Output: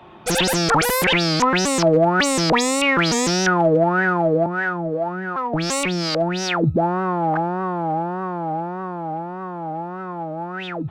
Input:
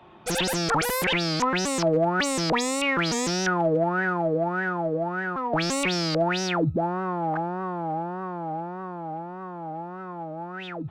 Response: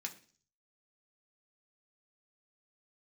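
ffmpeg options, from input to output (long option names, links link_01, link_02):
-filter_complex "[0:a]asettb=1/sr,asplit=3[link_01][link_02][link_03];[link_01]atrim=end=4.464[link_04];[link_02]atrim=start=4.46:end=6.64,asetpts=PTS-STARTPTS,afade=type=in:duration=0.004:curve=qsin,afade=type=out:start_time=2.176:duration=0.004:curve=qsin,acrossover=split=430[link_05][link_06];[link_05]aeval=exprs='val(0)*(1-0.7/2+0.7/2*cos(2*PI*2.7*n/s))':channel_layout=same[link_07];[link_06]aeval=exprs='val(0)*(1-0.7/2-0.7/2*cos(2*PI*2.7*n/s))':channel_layout=same[link_08];[link_07][link_08]amix=inputs=2:normalize=0[link_09];[link_03]atrim=start=6.636[link_10];[link_04][link_09]acrossfade=duration=0.004:curve1=hsin:curve2=qsin[link_11];[link_11][link_10]acrossfade=duration=0.004:curve1=qsin:curve2=hsin,volume=6.5dB"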